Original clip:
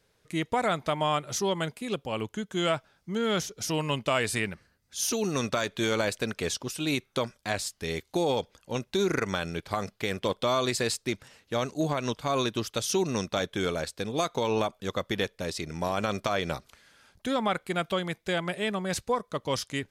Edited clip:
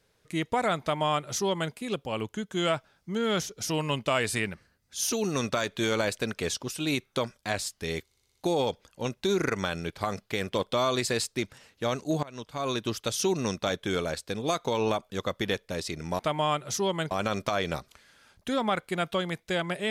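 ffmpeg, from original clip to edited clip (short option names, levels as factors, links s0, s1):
-filter_complex "[0:a]asplit=9[s0][s1][s2][s3][s4][s5][s6][s7][s8];[s0]atrim=end=8.112[s9];[s1]atrim=start=8.048:end=8.112[s10];[s2]atrim=start=8.048:end=8.112[s11];[s3]atrim=start=8.048:end=8.112[s12];[s4]atrim=start=8.048:end=8.112[s13];[s5]atrim=start=8.048:end=11.93,asetpts=PTS-STARTPTS,afade=t=out:st=3.878:d=0.004:c=hsin:silence=0.11885[s14];[s6]atrim=start=11.93:end=15.892,asetpts=PTS-STARTPTS,afade=t=in:d=0.68:silence=0.11885[s15];[s7]atrim=start=0.808:end=1.732[s16];[s8]atrim=start=15.888[s17];[s9][s10]acrossfade=d=0.004:c1=hsin:c2=hsin[s18];[s18][s11]acrossfade=d=0.004:c1=hsin:c2=hsin[s19];[s19][s12]acrossfade=d=0.004:c1=hsin:c2=hsin[s20];[s20][s13]acrossfade=d=0.004:c1=hsin:c2=hsin[s21];[s14][s15]concat=n=2:v=0:a=1[s22];[s21][s22]acrossfade=d=0.004:c1=hsin:c2=hsin[s23];[s23][s16]acrossfade=d=0.004:c1=hsin:c2=hsin[s24];[s24][s17]acrossfade=d=0.004:c1=hsin:c2=hsin"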